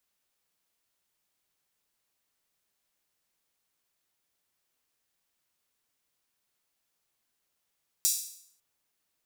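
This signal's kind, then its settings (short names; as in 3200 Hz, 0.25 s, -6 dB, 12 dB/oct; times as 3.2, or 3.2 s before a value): open hi-hat length 0.55 s, high-pass 5900 Hz, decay 0.64 s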